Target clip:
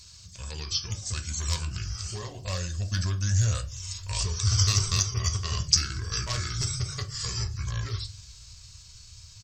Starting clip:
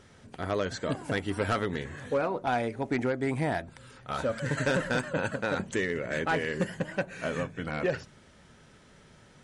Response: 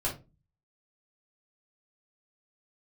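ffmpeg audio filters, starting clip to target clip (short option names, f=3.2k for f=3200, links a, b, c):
-filter_complex "[0:a]highpass=f=67:p=1,asplit=2[a][b];[b]acompressor=threshold=-37dB:ratio=6,volume=-2dB[c];[a][c]amix=inputs=2:normalize=0,firequalizer=gain_entry='entry(110,0);entry(330,-25);entry(6400,13)':delay=0.05:min_phase=1,dynaudnorm=f=240:g=17:m=5.5dB,asetrate=33038,aresample=44100,atempo=1.33484,asubboost=boost=3.5:cutoff=86,asplit=2[d][e];[1:a]atrim=start_sample=2205,lowshelf=f=100:g=-12[f];[e][f]afir=irnorm=-1:irlink=0,volume=-7dB[g];[d][g]amix=inputs=2:normalize=0"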